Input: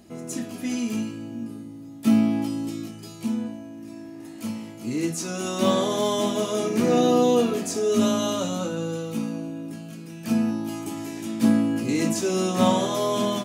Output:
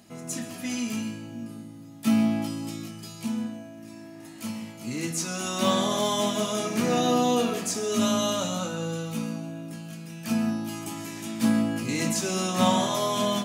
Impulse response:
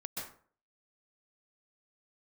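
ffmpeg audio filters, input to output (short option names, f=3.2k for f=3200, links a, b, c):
-filter_complex "[0:a]highpass=110,equalizer=f=360:w=0.97:g=-9.5,asplit=2[a][b];[1:a]atrim=start_sample=2205[c];[b][c]afir=irnorm=-1:irlink=0,volume=-9dB[d];[a][d]amix=inputs=2:normalize=0"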